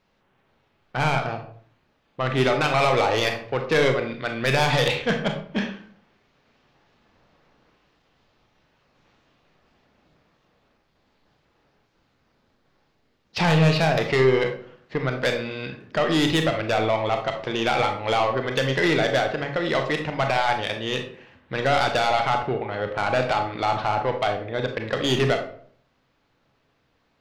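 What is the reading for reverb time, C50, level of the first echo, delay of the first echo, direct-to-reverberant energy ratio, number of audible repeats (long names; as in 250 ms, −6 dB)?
0.55 s, 7.5 dB, no echo audible, no echo audible, 4.0 dB, no echo audible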